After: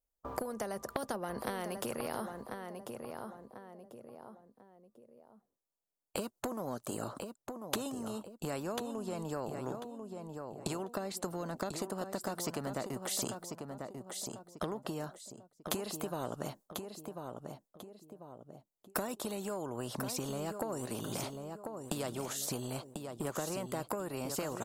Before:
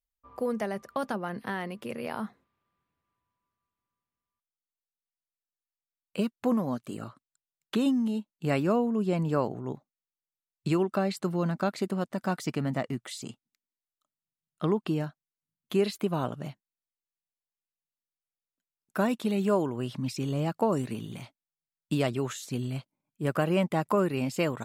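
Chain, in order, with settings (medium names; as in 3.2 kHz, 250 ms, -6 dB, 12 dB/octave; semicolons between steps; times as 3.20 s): gate with hold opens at -52 dBFS; FFT filter 150 Hz 0 dB, 600 Hz +9 dB, 2.3 kHz -16 dB, 7.2 kHz -1 dB; compression 6:1, threshold -40 dBFS, peak gain reduction 23.5 dB; feedback delay 1043 ms, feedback 20%, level -11 dB; spectrum-flattening compressor 2:1; trim +13 dB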